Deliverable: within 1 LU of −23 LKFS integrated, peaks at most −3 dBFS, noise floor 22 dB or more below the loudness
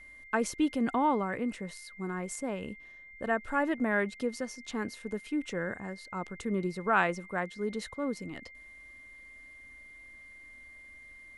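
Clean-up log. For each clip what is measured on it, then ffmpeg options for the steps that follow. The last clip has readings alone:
interfering tone 2,100 Hz; level of the tone −49 dBFS; integrated loudness −33.0 LKFS; sample peak −13.0 dBFS; target loudness −23.0 LKFS
→ -af "bandreject=frequency=2100:width=30"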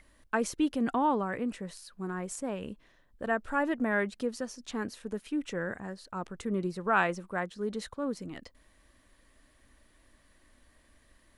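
interfering tone none found; integrated loudness −33.0 LKFS; sample peak −13.5 dBFS; target loudness −23.0 LKFS
→ -af "volume=10dB"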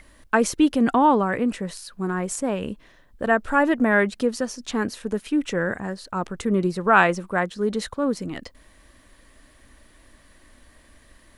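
integrated loudness −23.0 LKFS; sample peak −3.5 dBFS; background noise floor −55 dBFS

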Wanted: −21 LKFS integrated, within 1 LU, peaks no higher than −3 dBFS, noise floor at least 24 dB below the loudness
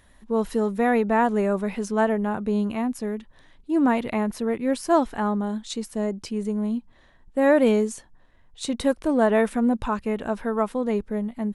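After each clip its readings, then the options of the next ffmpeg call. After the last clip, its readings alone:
integrated loudness −24.0 LKFS; sample peak −7.0 dBFS; target loudness −21.0 LKFS
→ -af "volume=3dB"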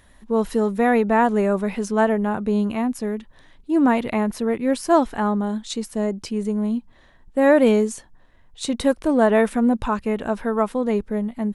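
integrated loudness −21.0 LKFS; sample peak −4.0 dBFS; background noise floor −53 dBFS

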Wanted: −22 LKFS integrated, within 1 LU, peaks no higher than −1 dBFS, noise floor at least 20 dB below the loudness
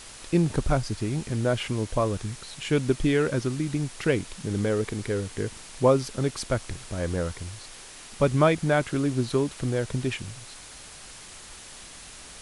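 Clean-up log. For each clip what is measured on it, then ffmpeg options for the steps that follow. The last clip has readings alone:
background noise floor −45 dBFS; target noise floor −47 dBFS; integrated loudness −27.0 LKFS; sample peak −8.5 dBFS; target loudness −22.0 LKFS
→ -af "afftdn=noise_reduction=6:noise_floor=-45"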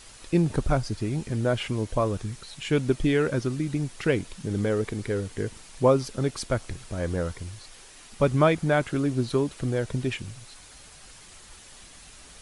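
background noise floor −49 dBFS; integrated loudness −27.0 LKFS; sample peak −8.5 dBFS; target loudness −22.0 LKFS
→ -af "volume=5dB"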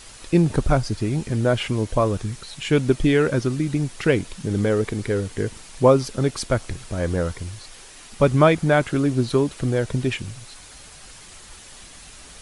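integrated loudness −22.0 LKFS; sample peak −3.5 dBFS; background noise floor −44 dBFS

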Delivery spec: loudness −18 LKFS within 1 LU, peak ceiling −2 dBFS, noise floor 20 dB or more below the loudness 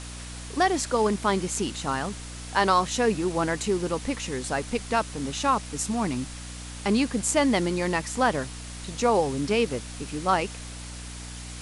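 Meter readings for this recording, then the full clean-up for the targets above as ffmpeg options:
mains hum 60 Hz; hum harmonics up to 300 Hz; level of the hum −38 dBFS; background noise floor −39 dBFS; target noise floor −46 dBFS; integrated loudness −26.0 LKFS; sample peak −8.0 dBFS; target loudness −18.0 LKFS
→ -af "bandreject=frequency=60:width_type=h:width=4,bandreject=frequency=120:width_type=h:width=4,bandreject=frequency=180:width_type=h:width=4,bandreject=frequency=240:width_type=h:width=4,bandreject=frequency=300:width_type=h:width=4"
-af "afftdn=noise_reduction=7:noise_floor=-39"
-af "volume=8dB,alimiter=limit=-2dB:level=0:latency=1"

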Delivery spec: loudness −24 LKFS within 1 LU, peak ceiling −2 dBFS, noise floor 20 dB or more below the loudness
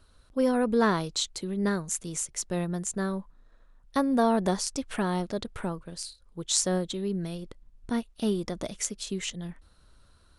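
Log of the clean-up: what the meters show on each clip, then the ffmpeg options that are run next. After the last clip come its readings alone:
integrated loudness −29.5 LKFS; sample peak −5.5 dBFS; target loudness −24.0 LKFS
→ -af "volume=5.5dB,alimiter=limit=-2dB:level=0:latency=1"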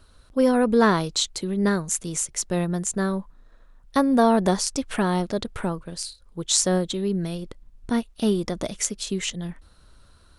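integrated loudness −24.0 LKFS; sample peak −2.0 dBFS; background noise floor −54 dBFS

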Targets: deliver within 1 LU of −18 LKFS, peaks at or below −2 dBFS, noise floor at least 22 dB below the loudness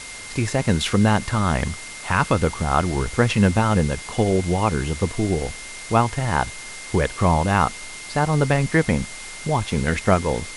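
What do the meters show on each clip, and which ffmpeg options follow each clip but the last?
interfering tone 2,100 Hz; level of the tone −38 dBFS; background noise floor −36 dBFS; target noise floor −44 dBFS; integrated loudness −21.5 LKFS; sample peak −4.0 dBFS; target loudness −18.0 LKFS
→ -af "bandreject=frequency=2100:width=30"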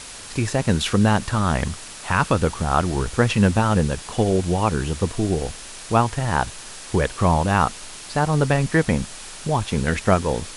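interfering tone none found; background noise floor −38 dBFS; target noise floor −44 dBFS
→ -af "afftdn=noise_reduction=6:noise_floor=-38"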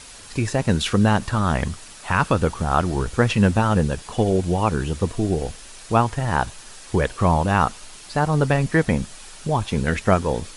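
background noise floor −42 dBFS; target noise floor −44 dBFS
→ -af "afftdn=noise_reduction=6:noise_floor=-42"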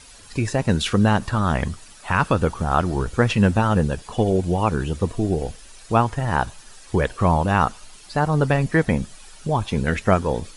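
background noise floor −45 dBFS; integrated loudness −21.5 LKFS; sample peak −4.0 dBFS; target loudness −18.0 LKFS
→ -af "volume=3.5dB,alimiter=limit=-2dB:level=0:latency=1"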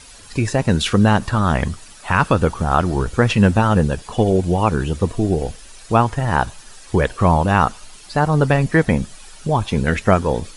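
integrated loudness −18.0 LKFS; sample peak −2.0 dBFS; background noise floor −42 dBFS

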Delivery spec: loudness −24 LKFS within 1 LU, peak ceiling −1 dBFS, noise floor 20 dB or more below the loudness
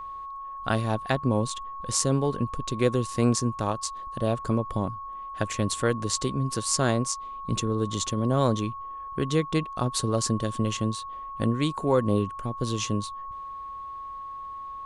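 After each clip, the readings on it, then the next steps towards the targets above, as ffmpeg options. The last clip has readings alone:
interfering tone 1,100 Hz; level of the tone −35 dBFS; integrated loudness −28.0 LKFS; sample peak −6.0 dBFS; target loudness −24.0 LKFS
→ -af "bandreject=frequency=1100:width=30"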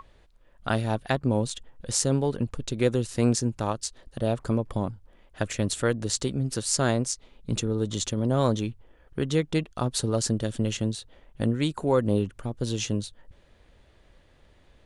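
interfering tone none found; integrated loudness −27.5 LKFS; sample peak −6.5 dBFS; target loudness −24.0 LKFS
→ -af "volume=3.5dB"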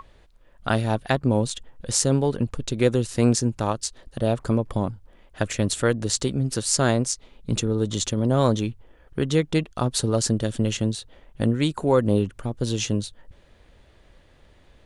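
integrated loudness −24.0 LKFS; sample peak −3.0 dBFS; background noise floor −55 dBFS

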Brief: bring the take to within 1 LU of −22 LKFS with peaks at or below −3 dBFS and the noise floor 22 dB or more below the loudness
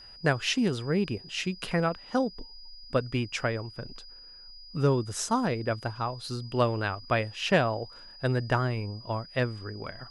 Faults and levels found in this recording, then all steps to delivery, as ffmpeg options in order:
interfering tone 4,900 Hz; level of the tone −47 dBFS; integrated loudness −29.5 LKFS; sample peak −9.5 dBFS; target loudness −22.0 LKFS
→ -af "bandreject=frequency=4900:width=30"
-af "volume=7.5dB,alimiter=limit=-3dB:level=0:latency=1"

